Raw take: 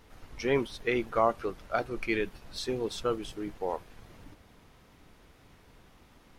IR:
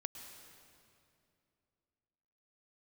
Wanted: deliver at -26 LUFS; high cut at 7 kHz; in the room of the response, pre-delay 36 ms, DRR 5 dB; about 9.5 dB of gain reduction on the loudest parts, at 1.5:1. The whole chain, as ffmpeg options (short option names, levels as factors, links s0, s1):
-filter_complex "[0:a]lowpass=7000,acompressor=threshold=0.00398:ratio=1.5,asplit=2[s0][s1];[1:a]atrim=start_sample=2205,adelay=36[s2];[s1][s2]afir=irnorm=-1:irlink=0,volume=0.75[s3];[s0][s3]amix=inputs=2:normalize=0,volume=4.22"